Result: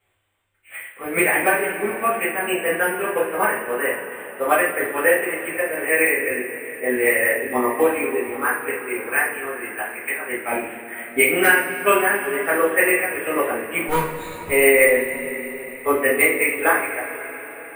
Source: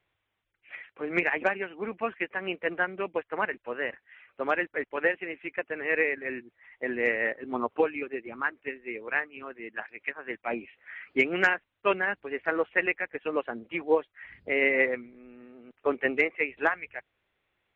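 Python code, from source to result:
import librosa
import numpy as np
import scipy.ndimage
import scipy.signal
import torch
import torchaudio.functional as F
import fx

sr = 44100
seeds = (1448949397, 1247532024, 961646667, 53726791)

y = fx.lower_of_two(x, sr, delay_ms=0.75, at=(13.88, 14.49))
y = np.repeat(scipy.signal.resample_poly(y, 1, 4), 4)[:len(y)]
y = fx.rev_double_slope(y, sr, seeds[0], early_s=0.48, late_s=5.0, knee_db=-18, drr_db=-9.5)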